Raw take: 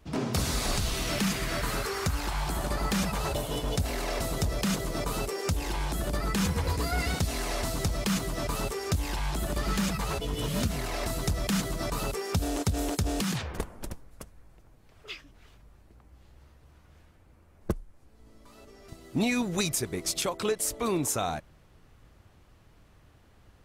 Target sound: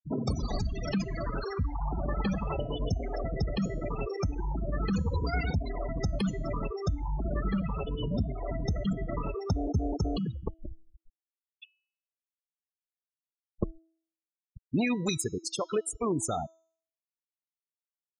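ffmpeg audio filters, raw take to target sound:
-af "atempo=1.3,afftfilt=real='re*gte(hypot(re,im),0.0562)':imag='im*gte(hypot(re,im),0.0562)':win_size=1024:overlap=0.75,bandreject=f=325.7:t=h:w=4,bandreject=f=651.4:t=h:w=4,bandreject=f=977.1:t=h:w=4,bandreject=f=1.3028k:t=h:w=4,bandreject=f=1.6285k:t=h:w=4,bandreject=f=1.9542k:t=h:w=4,bandreject=f=2.2799k:t=h:w=4,bandreject=f=2.6056k:t=h:w=4,bandreject=f=2.9313k:t=h:w=4,bandreject=f=3.257k:t=h:w=4,bandreject=f=3.5827k:t=h:w=4,bandreject=f=3.9084k:t=h:w=4,bandreject=f=4.2341k:t=h:w=4,bandreject=f=4.5598k:t=h:w=4,bandreject=f=4.8855k:t=h:w=4,bandreject=f=5.2112k:t=h:w=4,bandreject=f=5.5369k:t=h:w=4,bandreject=f=5.8626k:t=h:w=4,bandreject=f=6.1883k:t=h:w=4,bandreject=f=6.514k:t=h:w=4,bandreject=f=6.8397k:t=h:w=4,bandreject=f=7.1654k:t=h:w=4"

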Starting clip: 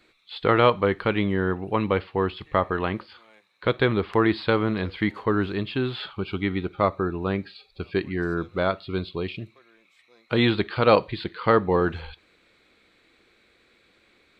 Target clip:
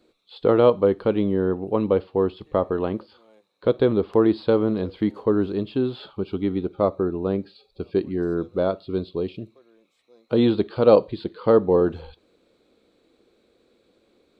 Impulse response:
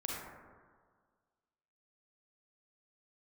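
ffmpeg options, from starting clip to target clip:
-af "equalizer=f=250:t=o:w=1:g=6,equalizer=f=500:t=o:w=1:g=8,equalizer=f=2k:t=o:w=1:g=-12,volume=-3.5dB"

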